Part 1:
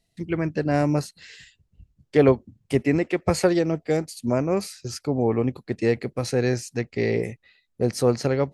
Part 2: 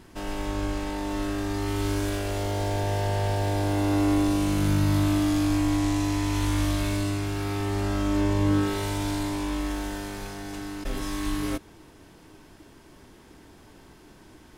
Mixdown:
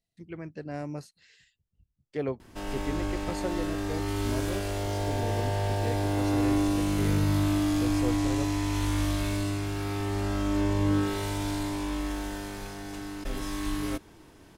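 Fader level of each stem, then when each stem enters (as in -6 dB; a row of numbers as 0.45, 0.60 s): -14.5, -2.5 dB; 0.00, 2.40 s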